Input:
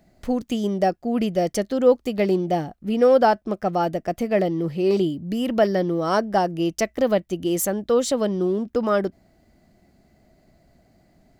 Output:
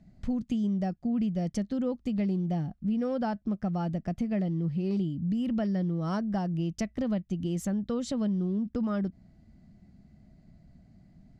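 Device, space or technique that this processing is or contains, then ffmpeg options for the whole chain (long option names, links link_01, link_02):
jukebox: -af "lowpass=7100,lowshelf=frequency=280:width_type=q:width=1.5:gain=11.5,acompressor=threshold=-20dB:ratio=3,volume=-8.5dB"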